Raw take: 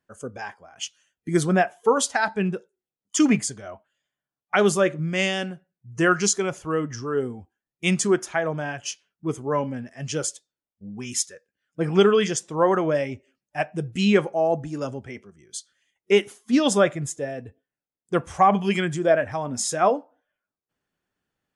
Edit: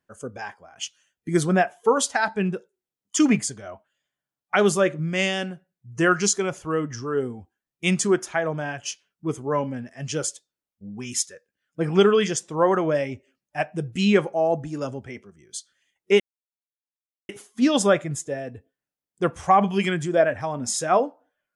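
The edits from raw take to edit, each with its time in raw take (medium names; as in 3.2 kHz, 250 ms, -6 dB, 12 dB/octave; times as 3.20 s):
16.20 s: insert silence 1.09 s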